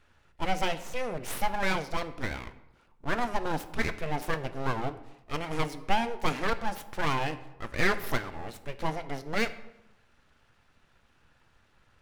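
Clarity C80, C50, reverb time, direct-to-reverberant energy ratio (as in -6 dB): 16.5 dB, 14.0 dB, 0.90 s, 10.5 dB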